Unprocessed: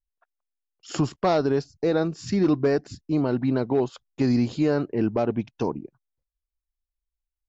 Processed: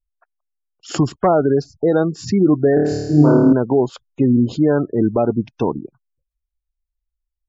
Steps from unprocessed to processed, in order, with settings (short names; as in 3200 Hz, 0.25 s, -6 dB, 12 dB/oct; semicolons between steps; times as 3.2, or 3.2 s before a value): spectral gate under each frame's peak -25 dB strong; 2.74–3.53 flutter echo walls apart 4.6 m, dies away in 1.2 s; gain +7 dB